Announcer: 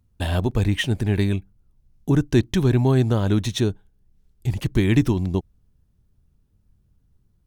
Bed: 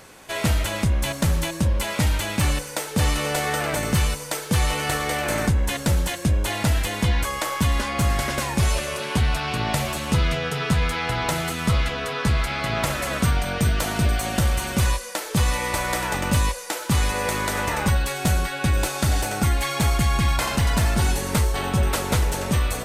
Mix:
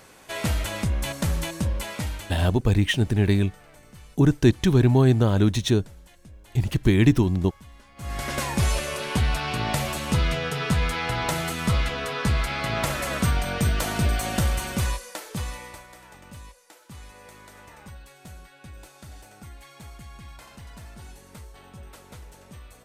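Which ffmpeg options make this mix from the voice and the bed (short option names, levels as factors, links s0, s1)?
-filter_complex "[0:a]adelay=2100,volume=1.06[s0];[1:a]volume=11.2,afade=t=out:st=1.6:d=0.95:silence=0.0707946,afade=t=in:st=7.96:d=0.44:silence=0.0562341,afade=t=out:st=14.39:d=1.48:silence=0.0891251[s1];[s0][s1]amix=inputs=2:normalize=0"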